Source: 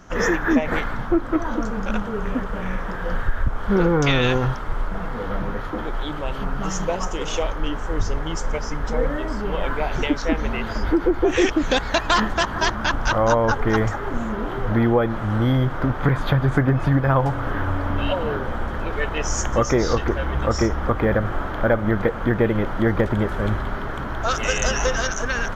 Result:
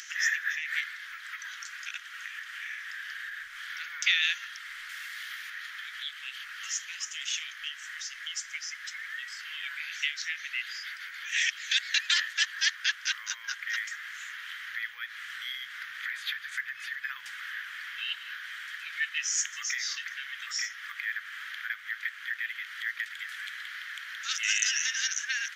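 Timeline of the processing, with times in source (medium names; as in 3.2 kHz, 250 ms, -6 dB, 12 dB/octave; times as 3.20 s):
4.89–5.50 s: treble shelf 4.3 kHz +9.5 dB
whole clip: elliptic high-pass 1.8 kHz, stop band 60 dB; upward compressor, threshold -34 dBFS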